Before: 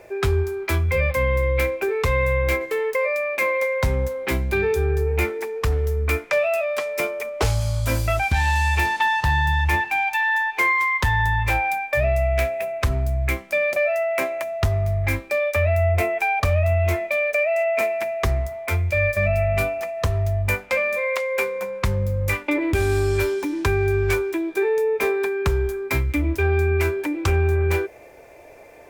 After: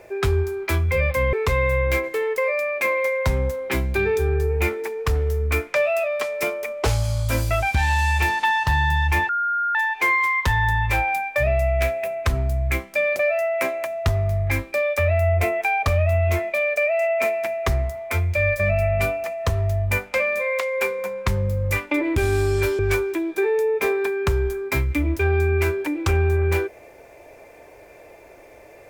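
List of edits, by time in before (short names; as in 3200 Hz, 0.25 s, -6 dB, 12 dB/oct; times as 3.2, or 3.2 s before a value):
1.33–1.9 cut
9.86–10.32 bleep 1410 Hz -19.5 dBFS
23.36–23.98 cut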